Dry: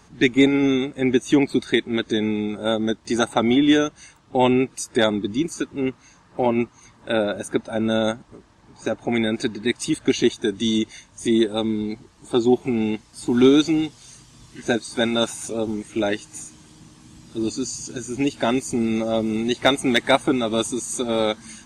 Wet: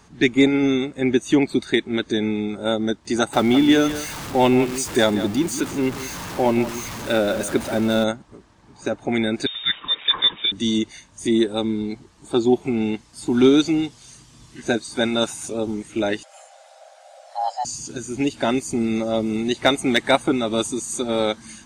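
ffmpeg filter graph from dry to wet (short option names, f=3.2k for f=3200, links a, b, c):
-filter_complex "[0:a]asettb=1/sr,asplit=3[a][b][c];[a]atrim=end=3.334[d];[b]atrim=start=3.33:end=8.04,asetpts=PTS-STARTPTS,afade=t=in:d=0.004:c=qsin,afade=t=out:st=4.706:d=0.004:c=qsin,aeval=exprs='val(0)+0.5*0.0447*sgn(val(0))':c=same,aecho=1:1:175:0.237,atrim=end_sample=207711[e];[c]atrim=start=8.036[f];[d][e]acrossfade=d=0.004:c1=hsin:c2=qsin[g];[g][f]acrossfade=d=0.004:c1=qsin:c2=hsin,asettb=1/sr,asplit=3[h][i][j];[h]atrim=end=9.464[k];[i]atrim=start=9.46:end=10.52,asetpts=PTS-STARTPTS,afade=t=in:d=0.004:c=qsin,afade=t=out:st=1.056:d=0.004:c=qsin,aeval=exprs='val(0)+0.5*0.0266*sgn(val(0))':c=same,highpass=220,lowpass=f=3.3k:t=q:w=0.5098,lowpass=f=3.3k:t=q:w=0.6013,lowpass=f=3.3k:t=q:w=0.9,lowpass=f=3.3k:t=q:w=2.563,afreqshift=-3900[l];[j]atrim=start=10.516[m];[k][l]acrossfade=d=0.004:c1=hsin:c2=qsin[n];[n][m]acrossfade=d=0.004:c1=qsin:c2=hsin,asettb=1/sr,asplit=3[o][p][q];[o]atrim=end=16.234[r];[p]atrim=start=16.23:end=17.65,asetpts=PTS-STARTPTS,afade=t=in:d=0.004:c=qsin,afade=t=out:st=1.416:d=0.004:c=qsin,acrossover=split=4200[s][t];[t]acompressor=threshold=-47dB:ratio=4:attack=1:release=60[u];[s][u]amix=inputs=2:normalize=0,highshelf=f=6.3k:g=-8.5,afreqshift=480[v];[q]atrim=start=17.646[w];[r][v]acrossfade=d=0.004:c1=hsin:c2=qsin[x];[x][w]acrossfade=d=0.004:c1=qsin:c2=hsin"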